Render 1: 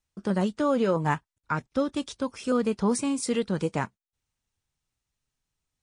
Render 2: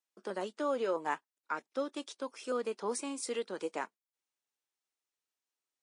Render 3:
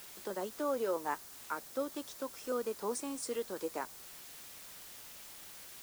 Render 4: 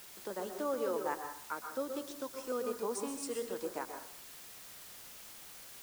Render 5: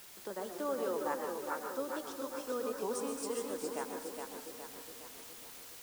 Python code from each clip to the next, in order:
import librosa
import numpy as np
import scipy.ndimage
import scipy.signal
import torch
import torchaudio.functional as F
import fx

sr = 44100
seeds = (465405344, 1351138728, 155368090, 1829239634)

y1 = scipy.signal.sosfilt(scipy.signal.butter(4, 320.0, 'highpass', fs=sr, output='sos'), x)
y1 = F.gain(torch.from_numpy(y1), -7.0).numpy()
y2 = fx.dmg_noise_colour(y1, sr, seeds[0], colour='white', level_db=-50.0)
y2 = fx.dynamic_eq(y2, sr, hz=2600.0, q=1.1, threshold_db=-54.0, ratio=4.0, max_db=-6)
y2 = F.gain(torch.from_numpy(y2), -1.0).numpy()
y3 = fx.rev_plate(y2, sr, seeds[1], rt60_s=0.56, hf_ratio=0.75, predelay_ms=110, drr_db=5.0)
y3 = F.gain(torch.from_numpy(y3), -1.5).numpy()
y4 = fx.echo_feedback(y3, sr, ms=415, feedback_pct=54, wet_db=-5)
y4 = fx.record_warp(y4, sr, rpm=78.0, depth_cents=100.0)
y4 = F.gain(torch.from_numpy(y4), -1.0).numpy()